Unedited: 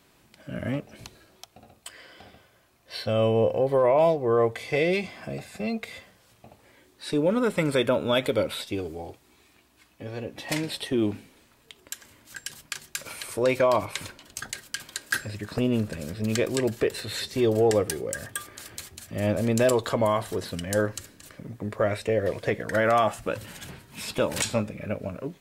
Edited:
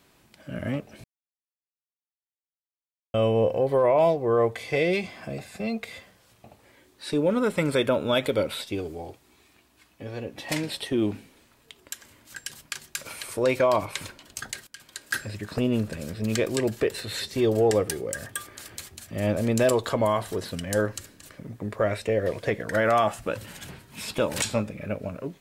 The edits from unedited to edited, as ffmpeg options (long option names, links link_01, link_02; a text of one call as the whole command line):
ffmpeg -i in.wav -filter_complex "[0:a]asplit=4[link_01][link_02][link_03][link_04];[link_01]atrim=end=1.04,asetpts=PTS-STARTPTS,afade=type=out:start_time=1.036:duration=0.004:curve=hsin[link_05];[link_02]atrim=start=1.04:end=3.14,asetpts=PTS-STARTPTS,volume=0[link_06];[link_03]atrim=start=3.14:end=14.67,asetpts=PTS-STARTPTS,afade=type=in:duration=0.004:curve=hsin,afade=type=out:start_time=11.526:duration=0.004:curve=hsin:silence=0.149624[link_07];[link_04]atrim=start=14.67,asetpts=PTS-STARTPTS,afade=type=in:duration=0.59:silence=0.149624[link_08];[link_05][link_06][link_07][link_08]concat=n=4:v=0:a=1" out.wav